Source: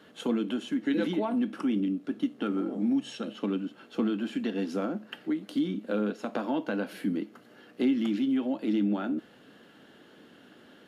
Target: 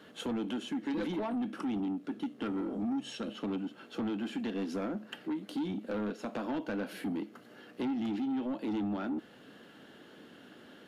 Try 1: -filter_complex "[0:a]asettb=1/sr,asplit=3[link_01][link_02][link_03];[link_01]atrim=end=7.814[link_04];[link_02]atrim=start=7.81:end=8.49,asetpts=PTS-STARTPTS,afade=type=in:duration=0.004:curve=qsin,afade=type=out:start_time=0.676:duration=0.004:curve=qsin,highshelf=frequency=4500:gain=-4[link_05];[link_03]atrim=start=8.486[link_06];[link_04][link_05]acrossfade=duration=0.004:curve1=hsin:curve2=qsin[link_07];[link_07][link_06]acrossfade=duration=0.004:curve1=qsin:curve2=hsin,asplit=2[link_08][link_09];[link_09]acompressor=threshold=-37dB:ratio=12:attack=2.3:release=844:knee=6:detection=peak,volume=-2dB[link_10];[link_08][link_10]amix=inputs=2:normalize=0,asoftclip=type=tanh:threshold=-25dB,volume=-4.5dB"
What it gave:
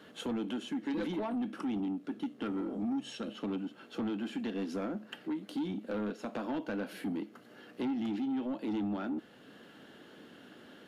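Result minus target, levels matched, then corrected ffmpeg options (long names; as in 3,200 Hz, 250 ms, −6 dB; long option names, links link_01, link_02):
downward compressor: peak gain reduction +7 dB
-filter_complex "[0:a]asettb=1/sr,asplit=3[link_01][link_02][link_03];[link_01]atrim=end=7.814[link_04];[link_02]atrim=start=7.81:end=8.49,asetpts=PTS-STARTPTS,afade=type=in:duration=0.004:curve=qsin,afade=type=out:start_time=0.676:duration=0.004:curve=qsin,highshelf=frequency=4500:gain=-4[link_05];[link_03]atrim=start=8.486[link_06];[link_04][link_05]acrossfade=duration=0.004:curve1=hsin:curve2=qsin[link_07];[link_07][link_06]acrossfade=duration=0.004:curve1=qsin:curve2=hsin,asplit=2[link_08][link_09];[link_09]acompressor=threshold=-29.5dB:ratio=12:attack=2.3:release=844:knee=6:detection=peak,volume=-2dB[link_10];[link_08][link_10]amix=inputs=2:normalize=0,asoftclip=type=tanh:threshold=-25dB,volume=-4.5dB"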